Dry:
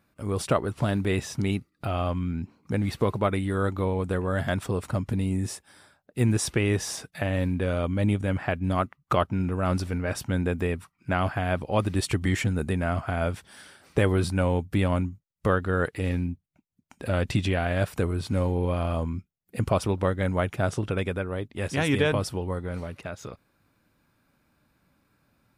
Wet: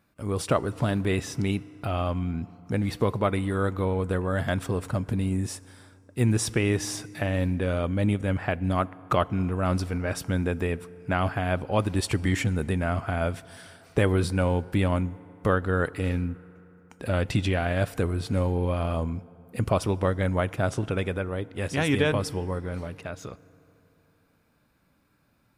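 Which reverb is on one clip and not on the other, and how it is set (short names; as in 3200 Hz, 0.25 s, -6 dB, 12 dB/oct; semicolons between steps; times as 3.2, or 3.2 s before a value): FDN reverb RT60 3.4 s, high-frequency decay 0.5×, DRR 19 dB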